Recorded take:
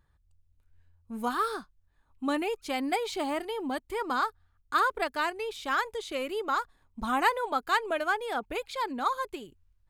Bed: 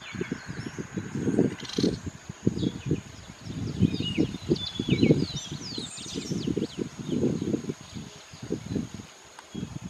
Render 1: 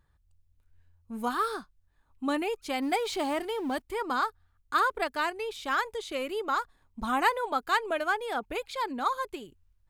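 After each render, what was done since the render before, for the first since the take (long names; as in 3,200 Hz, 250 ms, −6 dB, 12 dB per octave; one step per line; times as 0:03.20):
0:02.82–0:03.82: mu-law and A-law mismatch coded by mu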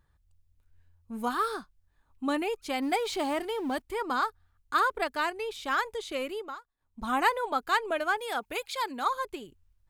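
0:06.24–0:07.14: duck −23 dB, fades 0.37 s
0:08.17–0:09.05: spectral tilt +2 dB per octave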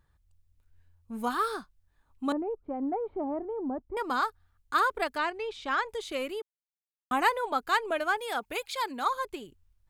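0:02.32–0:03.97: Bessel low-pass filter 650 Hz, order 4
0:05.18–0:05.89: high-frequency loss of the air 90 metres
0:06.42–0:07.11: silence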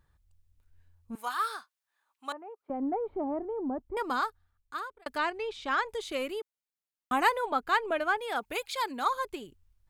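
0:01.15–0:02.70: high-pass filter 920 Hz
0:04.02–0:05.06: fade out
0:07.46–0:08.36: bass and treble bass +2 dB, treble −7 dB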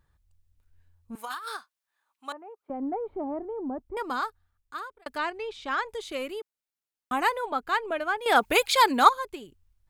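0:01.15–0:01.57: compressor whose output falls as the input rises −36 dBFS
0:08.26–0:09.09: clip gain +12 dB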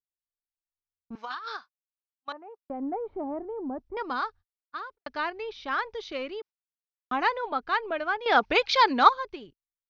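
noise gate −47 dBFS, range −44 dB
Chebyshev low-pass filter 5,900 Hz, order 6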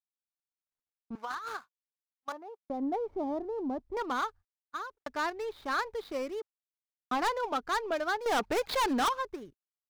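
running median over 15 samples
gain into a clipping stage and back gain 25.5 dB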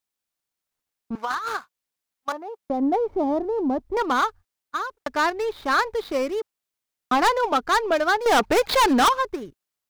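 level +10.5 dB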